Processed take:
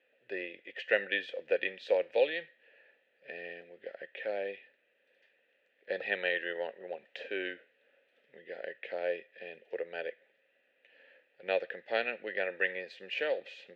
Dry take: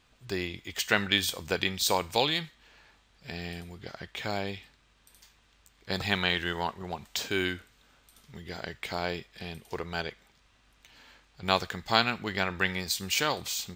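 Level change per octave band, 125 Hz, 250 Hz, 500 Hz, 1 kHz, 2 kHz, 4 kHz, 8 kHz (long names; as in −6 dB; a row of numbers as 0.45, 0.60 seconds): below −25 dB, −13.0 dB, +1.5 dB, −13.0 dB, −3.5 dB, −14.0 dB, below −35 dB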